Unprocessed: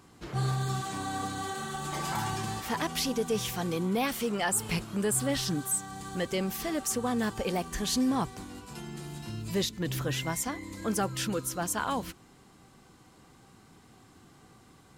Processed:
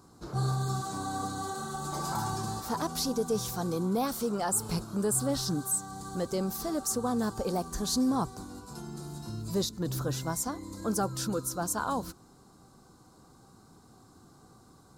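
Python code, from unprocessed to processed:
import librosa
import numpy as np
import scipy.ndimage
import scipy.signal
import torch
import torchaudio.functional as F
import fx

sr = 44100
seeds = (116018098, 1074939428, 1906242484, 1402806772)

y = fx.band_shelf(x, sr, hz=2400.0, db=-14.5, octaves=1.1)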